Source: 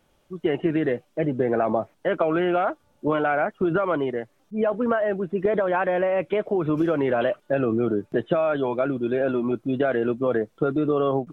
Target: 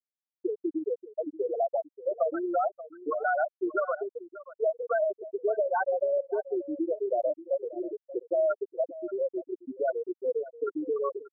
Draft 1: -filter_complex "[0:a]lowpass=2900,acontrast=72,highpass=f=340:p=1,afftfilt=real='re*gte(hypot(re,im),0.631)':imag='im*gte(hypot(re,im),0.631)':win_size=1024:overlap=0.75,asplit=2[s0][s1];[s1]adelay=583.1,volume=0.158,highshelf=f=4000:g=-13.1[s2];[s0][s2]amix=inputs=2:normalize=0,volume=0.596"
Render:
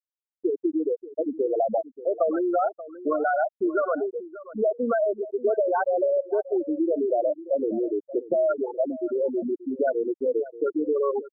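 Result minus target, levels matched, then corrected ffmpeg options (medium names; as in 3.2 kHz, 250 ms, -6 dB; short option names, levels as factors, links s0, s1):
250 Hz band +3.5 dB
-filter_complex "[0:a]lowpass=2900,acontrast=72,highpass=f=770:p=1,afftfilt=real='re*gte(hypot(re,im),0.631)':imag='im*gte(hypot(re,im),0.631)':win_size=1024:overlap=0.75,asplit=2[s0][s1];[s1]adelay=583.1,volume=0.158,highshelf=f=4000:g=-13.1[s2];[s0][s2]amix=inputs=2:normalize=0,volume=0.596"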